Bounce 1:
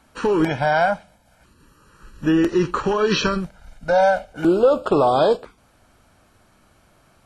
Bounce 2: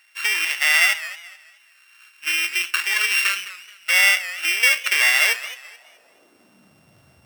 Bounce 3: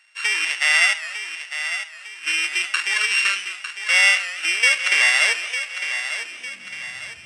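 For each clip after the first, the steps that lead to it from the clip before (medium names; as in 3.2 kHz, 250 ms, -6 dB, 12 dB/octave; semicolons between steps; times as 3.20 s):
sorted samples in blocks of 16 samples; high-pass sweep 2 kHz -> 91 Hz, 5.19–7.09 s; modulated delay 214 ms, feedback 33%, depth 151 cents, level -15.5 dB
on a send: thinning echo 903 ms, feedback 45%, high-pass 290 Hz, level -9.5 dB; on the sum: resampled via 22.05 kHz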